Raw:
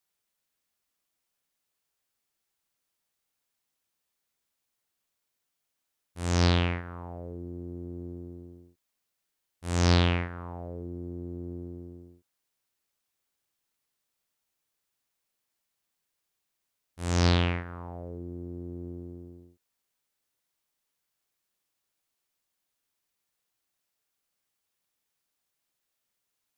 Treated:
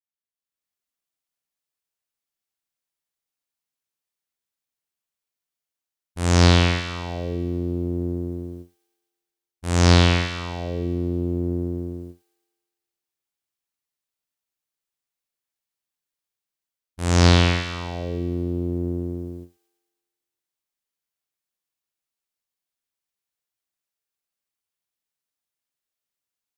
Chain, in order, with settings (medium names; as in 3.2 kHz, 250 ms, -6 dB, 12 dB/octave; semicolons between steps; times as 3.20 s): gate with hold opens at -40 dBFS; level rider gain up to 13.5 dB; feedback echo behind a high-pass 112 ms, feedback 63%, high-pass 2 kHz, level -6 dB